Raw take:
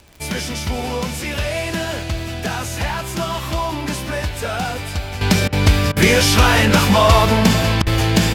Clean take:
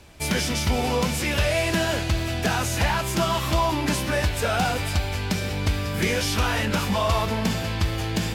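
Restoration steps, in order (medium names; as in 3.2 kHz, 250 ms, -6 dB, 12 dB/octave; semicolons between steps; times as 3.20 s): de-click; interpolate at 5.48/5.92/7.82 s, 44 ms; inverse comb 529 ms -18.5 dB; gain correction -10.5 dB, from 5.21 s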